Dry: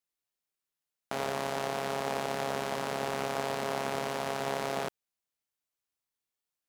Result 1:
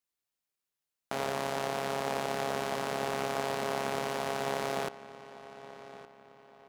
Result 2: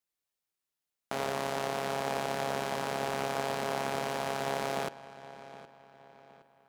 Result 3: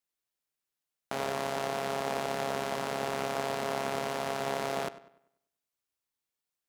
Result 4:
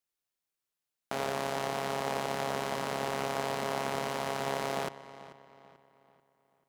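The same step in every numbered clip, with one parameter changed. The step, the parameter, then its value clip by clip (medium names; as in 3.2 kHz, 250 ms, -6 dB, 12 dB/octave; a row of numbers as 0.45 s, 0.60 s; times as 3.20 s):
filtered feedback delay, time: 1166 ms, 767 ms, 98 ms, 438 ms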